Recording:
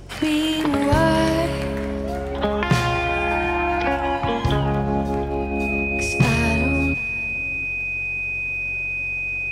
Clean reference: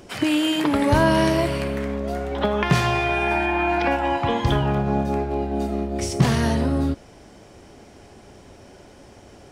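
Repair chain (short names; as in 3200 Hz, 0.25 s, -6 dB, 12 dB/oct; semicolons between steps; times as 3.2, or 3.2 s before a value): de-click; de-hum 45.8 Hz, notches 3; notch 2500 Hz, Q 30; inverse comb 0.725 s -21 dB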